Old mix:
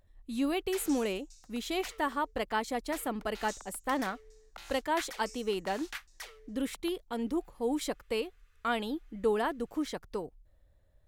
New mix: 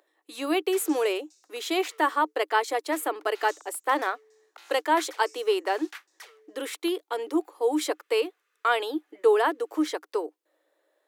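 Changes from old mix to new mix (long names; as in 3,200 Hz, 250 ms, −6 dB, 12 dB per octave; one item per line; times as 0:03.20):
speech +9.0 dB
master: add Chebyshev high-pass with heavy ripple 300 Hz, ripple 3 dB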